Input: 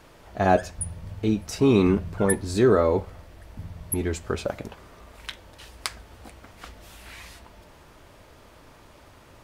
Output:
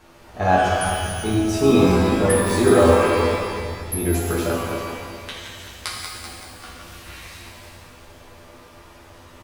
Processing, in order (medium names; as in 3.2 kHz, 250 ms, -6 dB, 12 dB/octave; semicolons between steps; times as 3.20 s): backward echo that repeats 192 ms, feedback 54%, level -6 dB; doubling 12 ms -3 dB; pitch-shifted reverb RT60 1.5 s, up +12 st, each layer -8 dB, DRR -3 dB; trim -2.5 dB